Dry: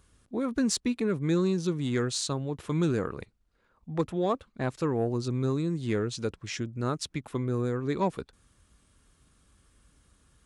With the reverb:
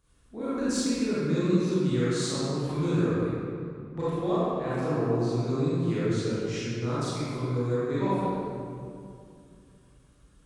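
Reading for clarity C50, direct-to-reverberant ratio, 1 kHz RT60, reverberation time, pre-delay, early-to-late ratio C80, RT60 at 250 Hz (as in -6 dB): -6.5 dB, -11.5 dB, 2.3 s, 2.5 s, 28 ms, -3.0 dB, 3.2 s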